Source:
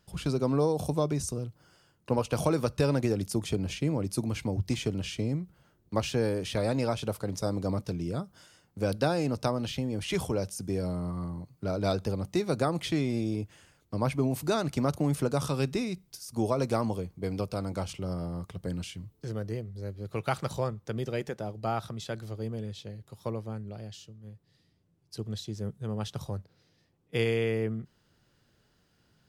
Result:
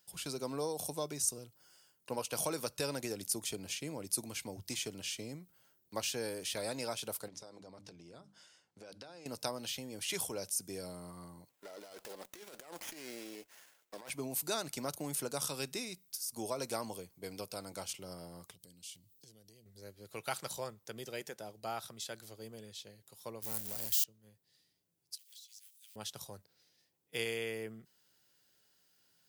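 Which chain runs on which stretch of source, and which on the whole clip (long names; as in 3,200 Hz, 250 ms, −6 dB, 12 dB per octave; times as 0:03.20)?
0:07.28–0:09.26: mains-hum notches 50/100/150/200/250/300 Hz + downward compressor 16 to 1, threshold −36 dBFS + high-frequency loss of the air 94 metres
0:11.49–0:14.10: high-pass filter 480 Hz + compressor whose output falls as the input rises −39 dBFS + windowed peak hold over 9 samples
0:18.54–0:19.66: drawn EQ curve 220 Hz 0 dB, 1,400 Hz −16 dB, 3,300 Hz +2 dB + downward compressor 10 to 1, threshold −43 dBFS
0:23.42–0:24.04: spike at every zero crossing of −34.5 dBFS + leveller curve on the samples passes 2
0:25.15–0:25.96: mu-law and A-law mismatch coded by mu + inverse Chebyshev high-pass filter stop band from 610 Hz, stop band 70 dB + downward compressor, threshold −53 dBFS
whole clip: RIAA equalisation recording; notch filter 1,200 Hz, Q 13; level −7.5 dB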